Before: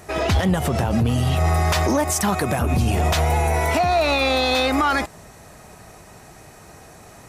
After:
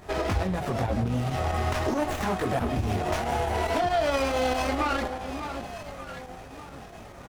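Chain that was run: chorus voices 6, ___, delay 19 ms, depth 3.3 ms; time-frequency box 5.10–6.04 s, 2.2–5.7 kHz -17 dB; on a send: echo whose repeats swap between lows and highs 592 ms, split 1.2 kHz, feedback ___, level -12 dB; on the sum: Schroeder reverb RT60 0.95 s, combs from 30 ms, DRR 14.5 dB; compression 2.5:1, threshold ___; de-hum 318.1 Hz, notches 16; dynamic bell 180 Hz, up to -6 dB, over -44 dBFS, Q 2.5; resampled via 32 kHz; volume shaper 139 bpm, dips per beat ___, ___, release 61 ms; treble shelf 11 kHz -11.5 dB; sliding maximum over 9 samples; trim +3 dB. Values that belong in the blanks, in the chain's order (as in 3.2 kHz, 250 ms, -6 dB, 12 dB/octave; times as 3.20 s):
0.79 Hz, 52%, -27 dBFS, 2, -6 dB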